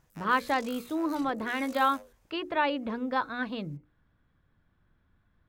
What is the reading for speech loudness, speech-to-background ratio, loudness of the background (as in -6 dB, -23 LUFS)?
-30.0 LUFS, 18.5 dB, -48.5 LUFS